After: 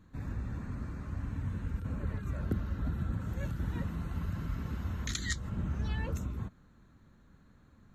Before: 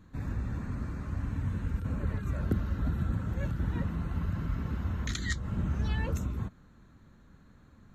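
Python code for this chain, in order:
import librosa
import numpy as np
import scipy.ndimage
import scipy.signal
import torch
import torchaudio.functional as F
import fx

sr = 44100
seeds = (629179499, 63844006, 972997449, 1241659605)

y = fx.high_shelf(x, sr, hz=fx.line((3.2, 5100.0), (5.48, 3500.0)), db=8.0, at=(3.2, 5.48), fade=0.02)
y = y * librosa.db_to_amplitude(-3.5)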